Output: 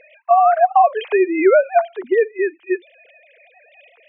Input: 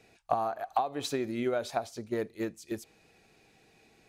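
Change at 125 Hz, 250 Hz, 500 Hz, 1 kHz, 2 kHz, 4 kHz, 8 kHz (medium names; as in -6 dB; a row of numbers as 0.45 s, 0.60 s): under -20 dB, +12.0 dB, +18.0 dB, +18.0 dB, +18.0 dB, no reading, under -35 dB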